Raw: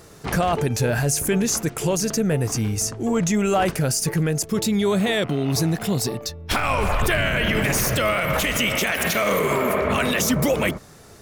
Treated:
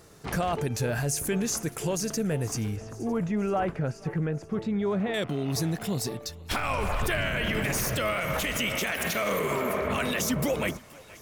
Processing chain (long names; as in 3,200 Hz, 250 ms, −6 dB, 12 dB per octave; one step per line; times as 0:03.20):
0:02.76–0:05.14: low-pass filter 1,800 Hz 12 dB per octave
feedback echo with a high-pass in the loop 477 ms, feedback 62%, high-pass 610 Hz, level −20 dB
level −7 dB